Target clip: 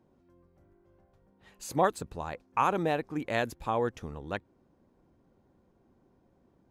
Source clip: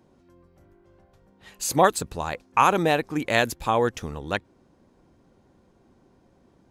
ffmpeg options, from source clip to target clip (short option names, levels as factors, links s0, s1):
-af "highshelf=f=2300:g=-8.5,volume=0.473"